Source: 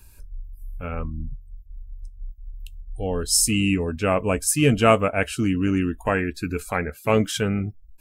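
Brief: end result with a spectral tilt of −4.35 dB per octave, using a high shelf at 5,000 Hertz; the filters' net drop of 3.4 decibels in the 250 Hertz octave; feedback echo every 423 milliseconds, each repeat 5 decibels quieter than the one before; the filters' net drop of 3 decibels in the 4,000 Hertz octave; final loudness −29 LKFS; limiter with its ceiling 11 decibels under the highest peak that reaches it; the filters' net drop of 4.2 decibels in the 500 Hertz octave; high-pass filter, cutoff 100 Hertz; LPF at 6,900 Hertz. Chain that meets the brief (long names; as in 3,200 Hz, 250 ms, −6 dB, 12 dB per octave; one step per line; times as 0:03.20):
high-pass filter 100 Hz
low-pass filter 6,900 Hz
parametric band 250 Hz −3 dB
parametric band 500 Hz −4.5 dB
parametric band 4,000 Hz −8 dB
high-shelf EQ 5,000 Hz +6.5 dB
brickwall limiter −15 dBFS
repeating echo 423 ms, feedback 56%, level −5 dB
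level −3 dB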